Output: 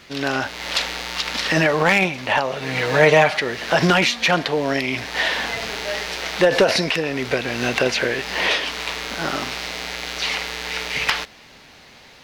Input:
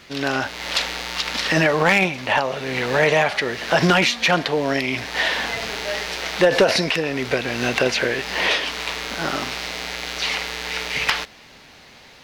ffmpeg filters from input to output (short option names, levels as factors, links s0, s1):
-filter_complex "[0:a]asettb=1/sr,asplit=3[s0][s1][s2];[s0]atrim=end=2.614[s3];[s1]atrim=start=2.61:end=3.39,asetpts=PTS-STARTPTS,afade=t=in:d=0.004:c=qsin,afade=t=out:st=0.776:d=0.004:c=qsin,aecho=1:1:6.5:0.71,atrim=end_sample=34398[s4];[s2]atrim=start=3.386[s5];[s3][s4]acrossfade=d=0.004:c1=hsin:c2=qsin[s6];[s6][s5]acrossfade=d=0.004:c1=qsin:c2=hsin"